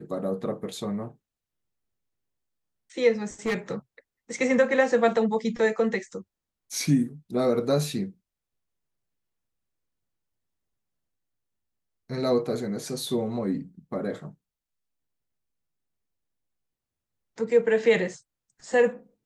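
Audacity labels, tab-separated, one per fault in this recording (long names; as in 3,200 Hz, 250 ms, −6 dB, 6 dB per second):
3.460000	3.750000	clipping −22.5 dBFS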